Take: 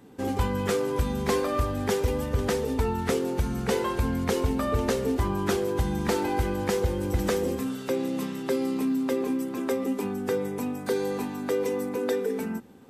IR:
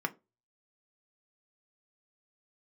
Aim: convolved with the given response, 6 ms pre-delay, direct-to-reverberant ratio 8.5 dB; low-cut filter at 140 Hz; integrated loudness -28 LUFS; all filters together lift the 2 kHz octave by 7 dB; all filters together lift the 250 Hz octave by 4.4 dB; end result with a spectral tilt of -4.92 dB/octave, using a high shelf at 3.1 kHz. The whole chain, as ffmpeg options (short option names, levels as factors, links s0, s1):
-filter_complex "[0:a]highpass=140,equalizer=f=250:t=o:g=5.5,equalizer=f=2000:t=o:g=7,highshelf=f=3100:g=5,asplit=2[s0][s1];[1:a]atrim=start_sample=2205,adelay=6[s2];[s1][s2]afir=irnorm=-1:irlink=0,volume=0.2[s3];[s0][s3]amix=inputs=2:normalize=0,volume=0.631"